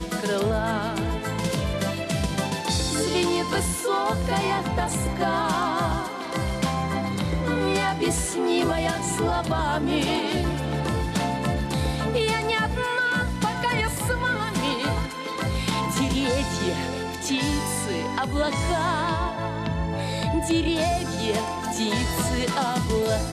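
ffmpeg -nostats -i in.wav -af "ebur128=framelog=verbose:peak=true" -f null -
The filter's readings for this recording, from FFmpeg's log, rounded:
Integrated loudness:
  I:         -25.0 LUFS
  Threshold: -34.9 LUFS
Loudness range:
  LRA:         1.4 LU
  Threshold: -44.9 LUFS
  LRA low:   -25.6 LUFS
  LRA high:  -24.2 LUFS
True peak:
  Peak:      -10.4 dBFS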